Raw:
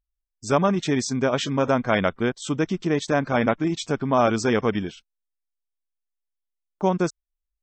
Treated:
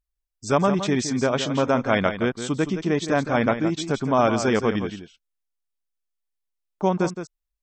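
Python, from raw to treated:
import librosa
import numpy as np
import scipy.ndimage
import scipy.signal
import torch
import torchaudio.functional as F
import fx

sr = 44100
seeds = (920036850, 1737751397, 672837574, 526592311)

y = x + 10.0 ** (-10.0 / 20.0) * np.pad(x, (int(167 * sr / 1000.0), 0))[:len(x)]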